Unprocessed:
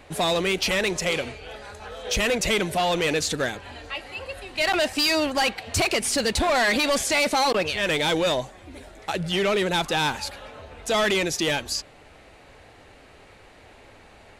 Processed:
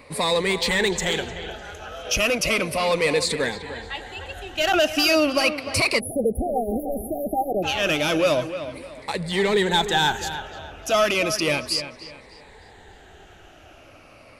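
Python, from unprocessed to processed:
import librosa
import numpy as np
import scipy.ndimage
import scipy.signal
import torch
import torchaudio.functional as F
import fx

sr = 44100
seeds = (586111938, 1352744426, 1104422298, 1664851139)

y = fx.spec_ripple(x, sr, per_octave=0.95, drift_hz=-0.34, depth_db=11)
y = fx.echo_wet_lowpass(y, sr, ms=301, feedback_pct=32, hz=3700.0, wet_db=-11.0)
y = fx.spec_erase(y, sr, start_s=6.0, length_s=1.63, low_hz=810.0, high_hz=9800.0)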